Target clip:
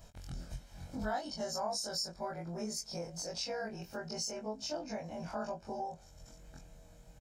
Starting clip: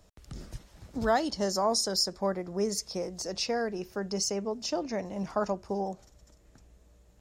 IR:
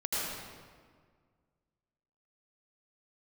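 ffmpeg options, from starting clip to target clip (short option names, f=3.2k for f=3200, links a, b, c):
-af "afftfilt=real='re':imag='-im':win_size=2048:overlap=0.75,aecho=1:1:1.3:0.48,acompressor=threshold=-55dB:ratio=2,volume=8.5dB"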